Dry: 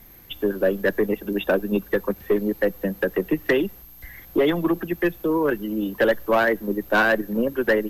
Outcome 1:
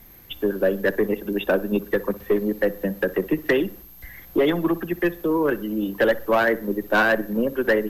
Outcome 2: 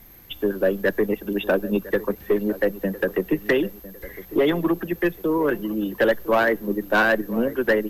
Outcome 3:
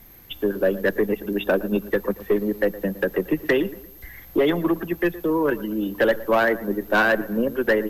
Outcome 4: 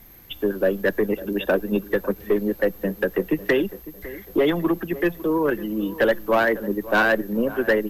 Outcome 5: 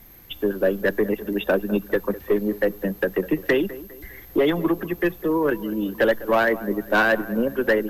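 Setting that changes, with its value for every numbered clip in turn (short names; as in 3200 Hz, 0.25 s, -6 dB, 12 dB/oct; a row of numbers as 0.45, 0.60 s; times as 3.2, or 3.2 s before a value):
dark delay, time: 61, 1005, 115, 552, 202 ms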